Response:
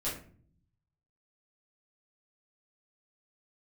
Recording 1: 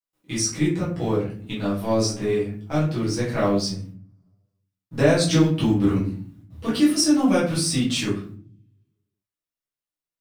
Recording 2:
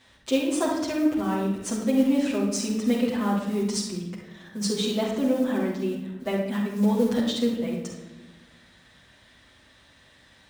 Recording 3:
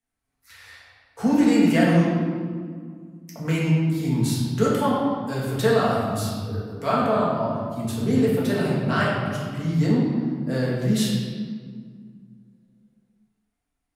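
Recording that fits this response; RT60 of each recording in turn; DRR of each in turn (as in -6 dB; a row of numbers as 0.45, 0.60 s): 1; 0.45, 1.1, 1.9 s; -9.0, -6.0, -7.5 dB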